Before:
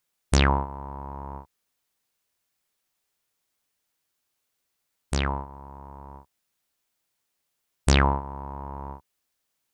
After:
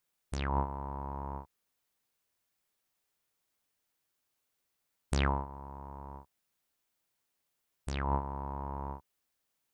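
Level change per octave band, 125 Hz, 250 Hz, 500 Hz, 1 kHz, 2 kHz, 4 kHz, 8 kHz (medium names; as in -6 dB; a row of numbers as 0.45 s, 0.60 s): -9.5 dB, -9.5 dB, -8.5 dB, -6.5 dB, -12.0 dB, -14.5 dB, -15.5 dB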